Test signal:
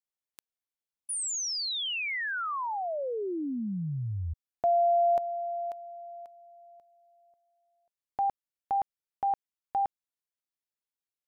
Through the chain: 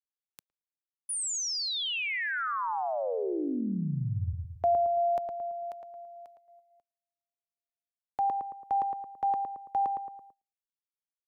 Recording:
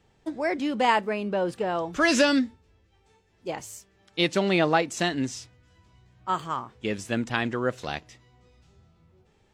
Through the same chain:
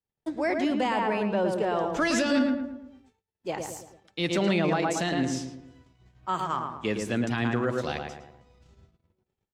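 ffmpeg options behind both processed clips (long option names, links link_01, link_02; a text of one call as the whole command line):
ffmpeg -i in.wav -filter_complex "[0:a]asplit=2[link_01][link_02];[link_02]adelay=111,lowpass=frequency=1600:poles=1,volume=-4dB,asplit=2[link_03][link_04];[link_04]adelay=111,lowpass=frequency=1600:poles=1,volume=0.48,asplit=2[link_05][link_06];[link_06]adelay=111,lowpass=frequency=1600:poles=1,volume=0.48,asplit=2[link_07][link_08];[link_08]adelay=111,lowpass=frequency=1600:poles=1,volume=0.48,asplit=2[link_09][link_10];[link_10]adelay=111,lowpass=frequency=1600:poles=1,volume=0.48,asplit=2[link_11][link_12];[link_12]adelay=111,lowpass=frequency=1600:poles=1,volume=0.48[link_13];[link_01][link_03][link_05][link_07][link_09][link_11][link_13]amix=inputs=7:normalize=0,agate=range=-33dB:threshold=-53dB:ratio=3:release=86:detection=rms,acrossover=split=220[link_14][link_15];[link_15]alimiter=limit=-17.5dB:level=0:latency=1:release=27[link_16];[link_14][link_16]amix=inputs=2:normalize=0" out.wav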